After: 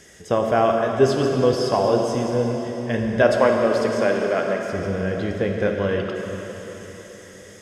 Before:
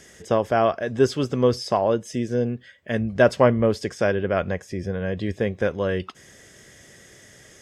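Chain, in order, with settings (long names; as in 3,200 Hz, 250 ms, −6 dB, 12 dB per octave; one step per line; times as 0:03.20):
0:03.22–0:04.70: Bessel high-pass filter 260 Hz, order 8
dense smooth reverb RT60 4.2 s, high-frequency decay 1×, DRR 1 dB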